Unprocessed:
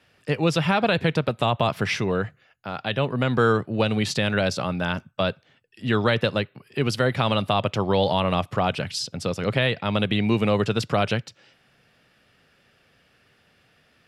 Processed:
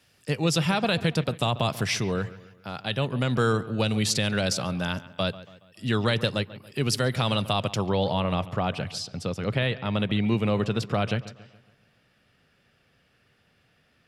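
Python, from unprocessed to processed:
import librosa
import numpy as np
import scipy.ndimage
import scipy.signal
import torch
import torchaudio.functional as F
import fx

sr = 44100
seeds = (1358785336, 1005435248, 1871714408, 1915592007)

y = fx.bass_treble(x, sr, bass_db=4, treble_db=fx.steps((0.0, 13.0), (7.86, 0.0)))
y = fx.echo_wet_lowpass(y, sr, ms=140, feedback_pct=45, hz=3200.0, wet_db=-16.5)
y = F.gain(torch.from_numpy(y), -5.0).numpy()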